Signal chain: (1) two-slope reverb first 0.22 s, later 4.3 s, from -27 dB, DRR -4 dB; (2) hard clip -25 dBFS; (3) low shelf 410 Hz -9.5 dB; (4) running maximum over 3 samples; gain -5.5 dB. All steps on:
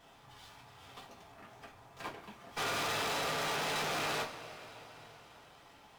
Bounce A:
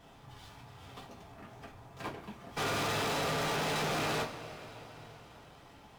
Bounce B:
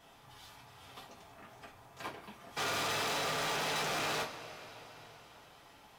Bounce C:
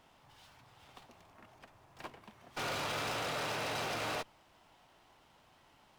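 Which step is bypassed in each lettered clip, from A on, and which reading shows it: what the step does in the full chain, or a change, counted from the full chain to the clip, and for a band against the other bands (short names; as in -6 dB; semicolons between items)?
3, 125 Hz band +7.5 dB; 4, distortion -10 dB; 1, momentary loudness spread change -6 LU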